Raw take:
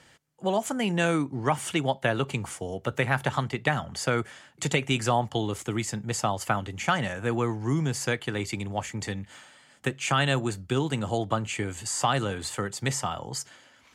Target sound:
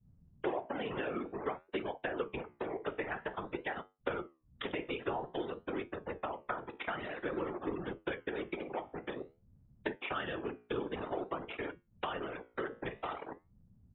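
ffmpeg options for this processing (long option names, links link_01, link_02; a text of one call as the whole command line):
ffmpeg -i in.wav -filter_complex "[0:a]aresample=8000,acrusher=bits=4:mix=0:aa=0.000001,aresample=44100,aeval=exprs='val(0)+0.00158*(sin(2*PI*60*n/s)+sin(2*PI*2*60*n/s)/2+sin(2*PI*3*60*n/s)/3+sin(2*PI*4*60*n/s)/4+sin(2*PI*5*60*n/s)/5)':channel_layout=same,acompressor=threshold=-41dB:ratio=5,highpass=42,equalizer=frequency=380:width=2.2:gain=11.5,bandreject=frequency=50:width_type=h:width=6,bandreject=frequency=100:width_type=h:width=6,bandreject=frequency=150:width_type=h:width=6,bandreject=frequency=200:width_type=h:width=6,asplit=2[link_01][link_02];[link_02]aecho=0:1:24|49:0.141|0.282[link_03];[link_01][link_03]amix=inputs=2:normalize=0,afftfilt=real='re*gte(hypot(re,im),0.00794)':imag='im*gte(hypot(re,im),0.00794)':win_size=1024:overlap=0.75,afftfilt=real='hypot(re,im)*cos(2*PI*random(0))':imag='hypot(re,im)*sin(2*PI*random(1))':win_size=512:overlap=0.75,equalizer=frequency=1300:width=0.33:gain=10,flanger=delay=9.9:depth=8.1:regen=-75:speed=0.51:shape=sinusoidal,volume=5dB" out.wav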